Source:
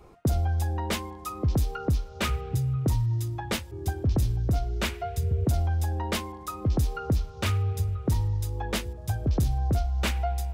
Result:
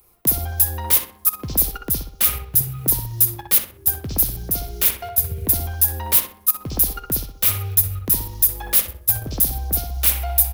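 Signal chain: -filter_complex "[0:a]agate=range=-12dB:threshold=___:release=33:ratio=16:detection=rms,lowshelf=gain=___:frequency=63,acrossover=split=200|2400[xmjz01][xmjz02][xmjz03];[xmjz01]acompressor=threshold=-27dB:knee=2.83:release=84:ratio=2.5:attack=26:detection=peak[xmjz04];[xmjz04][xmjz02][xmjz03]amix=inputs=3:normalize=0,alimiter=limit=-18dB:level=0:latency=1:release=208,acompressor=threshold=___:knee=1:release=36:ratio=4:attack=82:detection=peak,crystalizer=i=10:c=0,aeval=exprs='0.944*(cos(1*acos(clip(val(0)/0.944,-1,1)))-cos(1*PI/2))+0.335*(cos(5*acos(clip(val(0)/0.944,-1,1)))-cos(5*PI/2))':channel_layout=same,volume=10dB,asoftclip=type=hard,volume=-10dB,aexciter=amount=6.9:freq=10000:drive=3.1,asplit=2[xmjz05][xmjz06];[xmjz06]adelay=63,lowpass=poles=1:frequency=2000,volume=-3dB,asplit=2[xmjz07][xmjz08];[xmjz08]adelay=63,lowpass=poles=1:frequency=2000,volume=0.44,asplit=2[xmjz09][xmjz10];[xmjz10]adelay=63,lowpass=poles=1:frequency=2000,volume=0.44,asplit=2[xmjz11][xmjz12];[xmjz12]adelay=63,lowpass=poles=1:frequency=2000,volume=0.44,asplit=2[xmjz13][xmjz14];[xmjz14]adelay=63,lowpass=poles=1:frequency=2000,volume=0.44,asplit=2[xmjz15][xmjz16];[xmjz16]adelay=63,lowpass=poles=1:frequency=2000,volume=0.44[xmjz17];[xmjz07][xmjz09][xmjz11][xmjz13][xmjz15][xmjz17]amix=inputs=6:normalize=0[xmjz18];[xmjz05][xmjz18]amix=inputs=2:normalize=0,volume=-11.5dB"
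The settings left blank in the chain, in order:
-33dB, 8, -30dB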